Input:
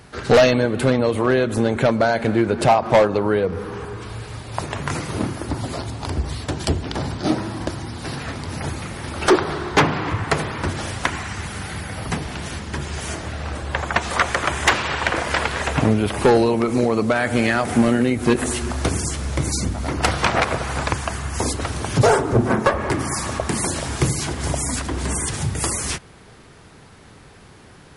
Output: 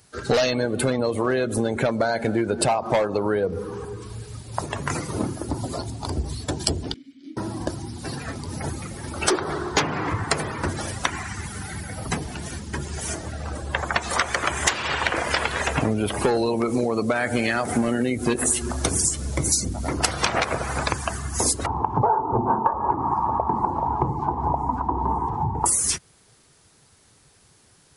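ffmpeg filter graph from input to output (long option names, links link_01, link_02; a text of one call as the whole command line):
ffmpeg -i in.wav -filter_complex "[0:a]asettb=1/sr,asplit=3[link_01][link_02][link_03];[link_01]atrim=end=6.944[link_04];[link_02]atrim=start=6.94:end=7.37,asetpts=PTS-STARTPTS,afade=type=in:duration=0.004:curve=qsin,afade=type=out:start_time=0.426:duration=0.004:curve=qsin,acrossover=split=100|510[link_05][link_06][link_07];[link_05]acompressor=threshold=-38dB:ratio=4[link_08];[link_06]acompressor=threshold=-33dB:ratio=4[link_09];[link_07]acompressor=threshold=-29dB:ratio=4[link_10];[link_08][link_09][link_10]amix=inputs=3:normalize=0,asplit=3[link_11][link_12][link_13];[link_11]bandpass=frequency=270:width_type=q:width=8,volume=0dB[link_14];[link_12]bandpass=frequency=2290:width_type=q:width=8,volume=-6dB[link_15];[link_13]bandpass=frequency=3010:width_type=q:width=8,volume=-9dB[link_16];[link_14][link_15][link_16]amix=inputs=3:normalize=0[link_17];[link_03]atrim=start=7.366[link_18];[link_04][link_17]acrossfade=duration=0.004:curve1=hsin:curve2=qsin[link_19];[link_19][link_18]acrossfade=duration=0.004:curve1=qsin:curve2=hsin,asettb=1/sr,asplit=3[link_20][link_21][link_22];[link_20]atrim=end=21.664[link_23];[link_21]atrim=start=21.66:end=25.66,asetpts=PTS-STARTPTS,afade=type=in:duration=0.004:curve=qsin,afade=type=out:start_time=3.996:duration=0.004:curve=qsin,lowpass=frequency=910:width_type=q:width=8.3,equalizer=frequency=590:width=4.1:gain=-9.5[link_24];[link_22]atrim=start=25.656[link_25];[link_23][link_24]acrossfade=duration=0.004:curve1=hsin:curve2=qsin[link_26];[link_26][link_25]acrossfade=duration=0.004:curve1=qsin:curve2=hsin,afftdn=noise_reduction=14:noise_floor=-29,bass=frequency=250:gain=-3,treble=frequency=4000:gain=15,acompressor=threshold=-18dB:ratio=6" out.wav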